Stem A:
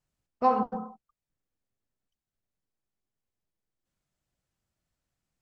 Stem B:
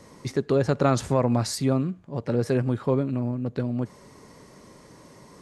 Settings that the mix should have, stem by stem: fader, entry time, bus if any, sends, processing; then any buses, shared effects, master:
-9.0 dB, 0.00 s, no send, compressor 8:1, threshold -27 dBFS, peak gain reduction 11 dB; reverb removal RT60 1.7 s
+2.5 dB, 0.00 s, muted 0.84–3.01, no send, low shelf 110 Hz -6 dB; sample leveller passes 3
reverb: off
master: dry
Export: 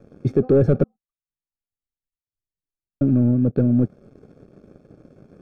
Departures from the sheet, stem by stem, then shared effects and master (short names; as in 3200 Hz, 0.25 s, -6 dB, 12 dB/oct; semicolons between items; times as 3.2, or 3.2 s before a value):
stem A -9.0 dB -> -2.0 dB; master: extra running mean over 45 samples